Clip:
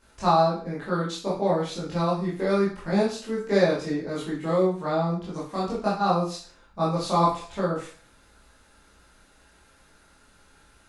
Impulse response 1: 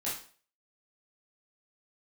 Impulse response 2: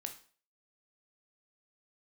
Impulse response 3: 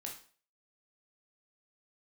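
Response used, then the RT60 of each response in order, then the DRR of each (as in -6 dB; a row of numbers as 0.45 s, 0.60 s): 1; 0.45 s, 0.45 s, 0.45 s; -9.0 dB, 5.0 dB, -0.5 dB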